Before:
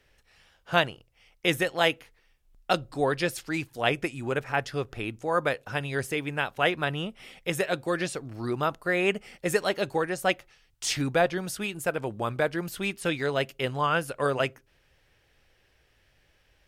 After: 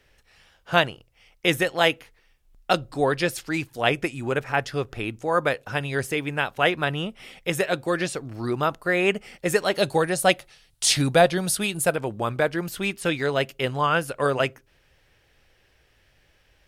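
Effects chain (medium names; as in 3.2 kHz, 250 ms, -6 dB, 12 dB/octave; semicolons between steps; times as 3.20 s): 9.74–11.96 s: fifteen-band graphic EQ 160 Hz +5 dB, 630 Hz +4 dB, 4 kHz +7 dB, 10 kHz +11 dB; trim +3.5 dB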